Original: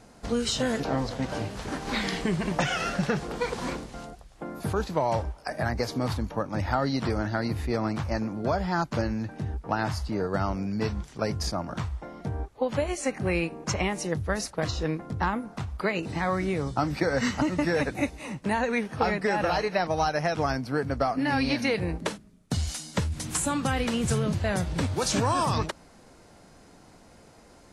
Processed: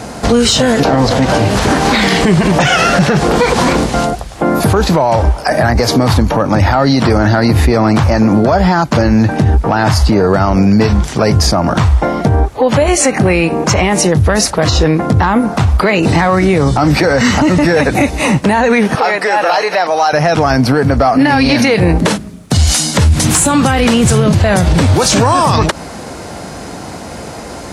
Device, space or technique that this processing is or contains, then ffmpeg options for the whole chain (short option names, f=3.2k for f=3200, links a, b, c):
mastering chain: -filter_complex "[0:a]highpass=f=48:w=0.5412,highpass=f=48:w=1.3066,equalizer=f=730:t=o:w=0.77:g=2,acompressor=threshold=-30dB:ratio=2,asoftclip=type=tanh:threshold=-18.5dB,alimiter=level_in=28dB:limit=-1dB:release=50:level=0:latency=1,asettb=1/sr,asplit=3[a][b][c];[a]atrim=end=18.954[d];[b]atrim=start=18.95:end=20.13,asetpts=PTS-STARTPTS,afade=t=in:d=0.004:c=qsin,afade=t=out:st=1.176:d=0.004:c=qsin,highpass=490[e];[c]atrim=start=20.126[f];[d][e]acrossfade=d=0.004:c1=hsin:c2=qsin[g];[g][f]acrossfade=d=0.004:c1=qsin:c2=hsin,volume=-1.5dB"